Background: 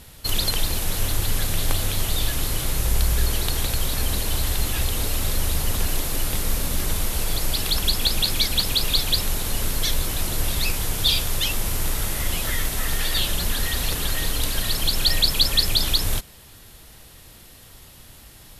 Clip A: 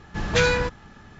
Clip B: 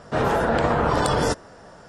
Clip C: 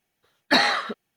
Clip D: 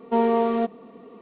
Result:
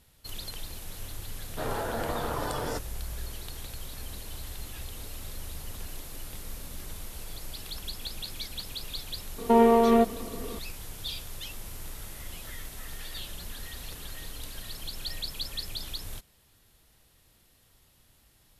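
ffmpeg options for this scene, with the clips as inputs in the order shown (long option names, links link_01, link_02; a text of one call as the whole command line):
ffmpeg -i bed.wav -i cue0.wav -i cue1.wav -i cue2.wav -i cue3.wav -filter_complex "[0:a]volume=-16.5dB[link_01];[2:a]equalizer=frequency=180:width_type=o:width=0.32:gain=-7[link_02];[4:a]alimiter=level_in=17dB:limit=-1dB:release=50:level=0:latency=1[link_03];[link_02]atrim=end=1.88,asetpts=PTS-STARTPTS,volume=-11.5dB,afade=type=in:duration=0.004:curve=hsin,afade=type=out:start_time=1.876:duration=0.004:curve=hsin,adelay=1450[link_04];[link_03]atrim=end=1.21,asetpts=PTS-STARTPTS,volume=-11dB,afade=type=in:duration=0.004:curve=hsin,afade=type=out:start_time=1.206:duration=0.004:curve=hsin,adelay=413658S[link_05];[link_01][link_04][link_05]amix=inputs=3:normalize=0" out.wav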